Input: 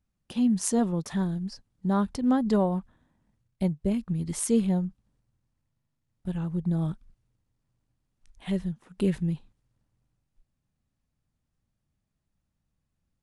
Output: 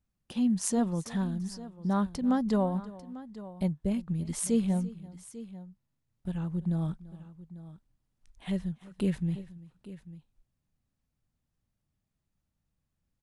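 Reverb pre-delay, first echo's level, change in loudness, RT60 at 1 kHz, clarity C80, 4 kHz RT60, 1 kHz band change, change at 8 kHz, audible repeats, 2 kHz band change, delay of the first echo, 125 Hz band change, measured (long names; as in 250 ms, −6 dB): no reverb audible, −19.5 dB, −3.0 dB, no reverb audible, no reverb audible, no reverb audible, −2.5 dB, −2.5 dB, 2, −2.5 dB, 339 ms, −2.5 dB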